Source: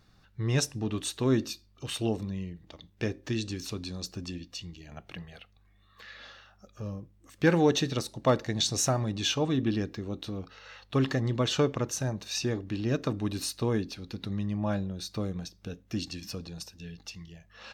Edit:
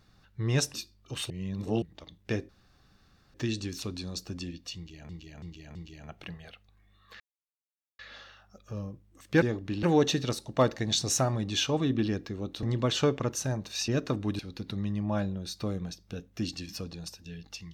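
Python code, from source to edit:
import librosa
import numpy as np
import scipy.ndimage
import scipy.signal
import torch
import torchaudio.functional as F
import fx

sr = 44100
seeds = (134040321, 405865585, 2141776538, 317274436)

y = fx.edit(x, sr, fx.cut(start_s=0.74, length_s=0.72),
    fx.reverse_span(start_s=2.02, length_s=0.52),
    fx.insert_room_tone(at_s=3.21, length_s=0.85),
    fx.repeat(start_s=4.63, length_s=0.33, count=4),
    fx.insert_silence(at_s=6.08, length_s=0.79),
    fx.cut(start_s=10.31, length_s=0.88),
    fx.move(start_s=12.44, length_s=0.41, to_s=7.51),
    fx.cut(start_s=13.36, length_s=0.57), tone=tone)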